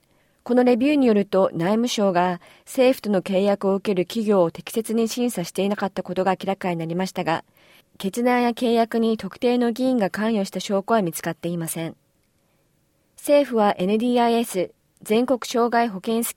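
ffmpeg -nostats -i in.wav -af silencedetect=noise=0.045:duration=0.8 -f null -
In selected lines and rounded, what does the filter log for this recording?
silence_start: 11.90
silence_end: 13.25 | silence_duration: 1.35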